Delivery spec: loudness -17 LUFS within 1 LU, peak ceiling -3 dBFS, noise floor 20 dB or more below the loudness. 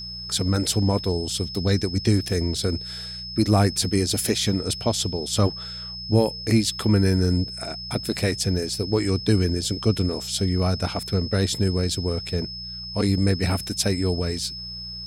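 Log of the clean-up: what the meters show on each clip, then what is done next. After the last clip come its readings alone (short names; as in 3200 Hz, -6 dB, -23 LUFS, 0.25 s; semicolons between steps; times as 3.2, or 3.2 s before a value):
hum 60 Hz; harmonics up to 180 Hz; hum level -39 dBFS; steady tone 5200 Hz; tone level -33 dBFS; loudness -23.5 LUFS; peak -7.0 dBFS; loudness target -17.0 LUFS
-> de-hum 60 Hz, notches 3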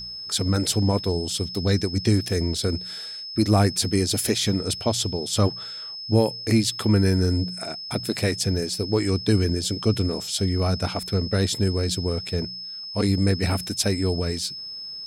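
hum none; steady tone 5200 Hz; tone level -33 dBFS
-> notch 5200 Hz, Q 30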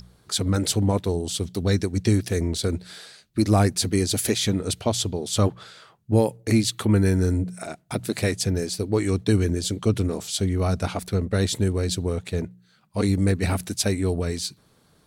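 steady tone none; loudness -24.0 LUFS; peak -8.0 dBFS; loudness target -17.0 LUFS
-> gain +7 dB; limiter -3 dBFS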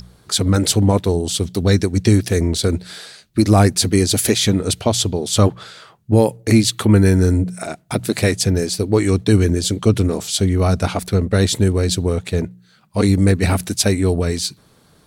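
loudness -17.0 LUFS; peak -3.0 dBFS; noise floor -53 dBFS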